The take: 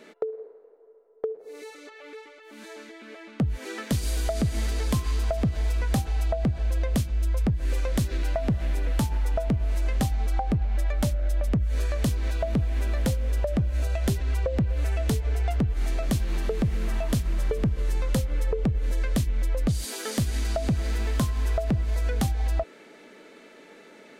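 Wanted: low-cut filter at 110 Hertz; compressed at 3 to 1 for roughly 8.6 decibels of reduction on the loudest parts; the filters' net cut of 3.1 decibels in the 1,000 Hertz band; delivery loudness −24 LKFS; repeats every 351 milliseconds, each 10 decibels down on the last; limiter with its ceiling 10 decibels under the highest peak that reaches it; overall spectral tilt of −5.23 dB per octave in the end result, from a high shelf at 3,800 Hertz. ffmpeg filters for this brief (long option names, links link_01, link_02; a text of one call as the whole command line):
ffmpeg -i in.wav -af "highpass=110,equalizer=frequency=1000:width_type=o:gain=-4.5,highshelf=frequency=3800:gain=-4,acompressor=threshold=-33dB:ratio=3,alimiter=level_in=6dB:limit=-24dB:level=0:latency=1,volume=-6dB,aecho=1:1:351|702|1053|1404:0.316|0.101|0.0324|0.0104,volume=16.5dB" out.wav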